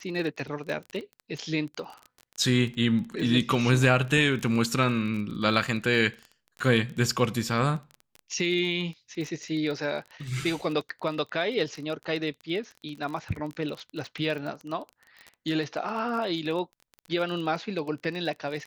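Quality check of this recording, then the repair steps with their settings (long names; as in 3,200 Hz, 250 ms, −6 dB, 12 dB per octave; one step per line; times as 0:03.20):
surface crackle 23 per second −33 dBFS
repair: click removal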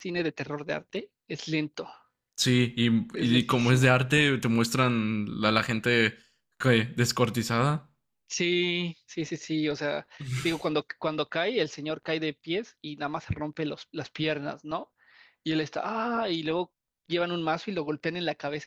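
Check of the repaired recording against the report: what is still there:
none of them is left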